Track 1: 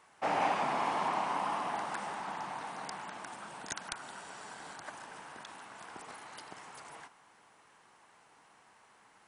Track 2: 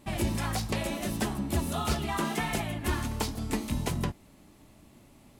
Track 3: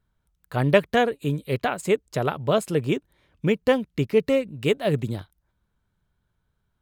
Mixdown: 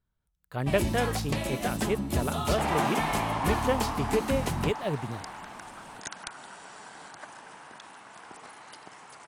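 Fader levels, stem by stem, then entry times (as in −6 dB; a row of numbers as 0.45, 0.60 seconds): +1.0, 0.0, −8.0 decibels; 2.35, 0.60, 0.00 seconds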